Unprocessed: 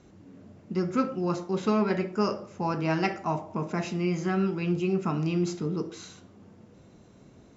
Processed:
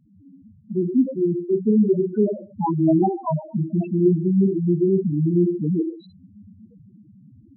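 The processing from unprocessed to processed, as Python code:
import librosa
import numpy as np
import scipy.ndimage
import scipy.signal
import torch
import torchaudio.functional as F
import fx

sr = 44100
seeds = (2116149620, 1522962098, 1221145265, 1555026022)

y = fx.spec_topn(x, sr, count=2)
y = fx.dynamic_eq(y, sr, hz=320.0, q=1.2, threshold_db=-44.0, ratio=4.0, max_db=6)
y = fx.rider(y, sr, range_db=10, speed_s=2.0)
y = y * librosa.db_to_amplitude(8.5)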